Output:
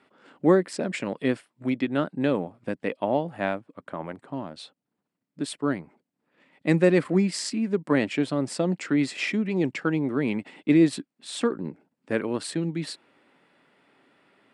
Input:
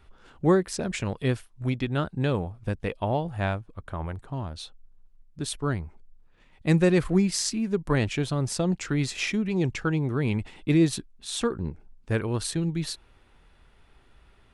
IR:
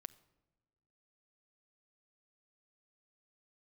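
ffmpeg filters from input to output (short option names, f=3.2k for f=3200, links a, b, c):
-af "highpass=f=170:w=0.5412,highpass=f=170:w=1.3066,equalizer=f=280:t=q:w=4:g=7,equalizer=f=570:t=q:w=4:g=5,equalizer=f=2k:t=q:w=4:g=4,equalizer=f=3.7k:t=q:w=4:g=-3,equalizer=f=6.2k:t=q:w=4:g=-9,lowpass=f=8.9k:w=0.5412,lowpass=f=8.9k:w=1.3066"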